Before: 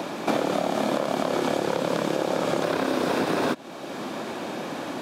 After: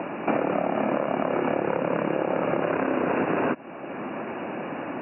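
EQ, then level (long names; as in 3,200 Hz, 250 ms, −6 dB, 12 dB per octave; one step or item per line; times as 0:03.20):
linear-phase brick-wall low-pass 2,900 Hz
0.0 dB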